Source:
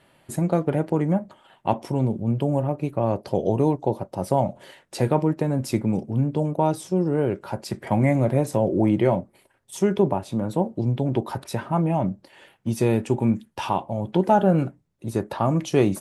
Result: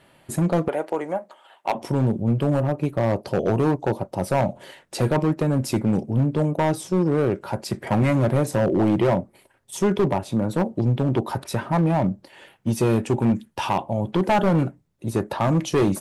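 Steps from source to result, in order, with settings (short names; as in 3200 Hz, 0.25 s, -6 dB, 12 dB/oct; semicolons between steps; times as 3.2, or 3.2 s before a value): 0.68–1.75 Chebyshev high-pass 580 Hz, order 2; overloaded stage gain 17.5 dB; gain +3 dB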